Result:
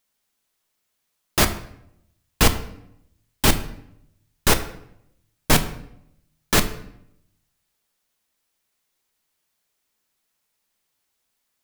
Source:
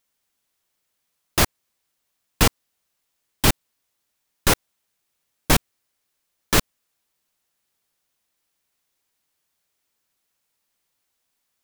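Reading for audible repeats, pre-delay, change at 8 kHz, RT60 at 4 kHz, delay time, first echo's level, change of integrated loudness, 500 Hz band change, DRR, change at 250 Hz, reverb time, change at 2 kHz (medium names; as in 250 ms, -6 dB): no echo, 5 ms, +0.5 dB, 0.55 s, no echo, no echo, 0.0 dB, +1.0 dB, 7.5 dB, +1.0 dB, 0.75 s, +1.0 dB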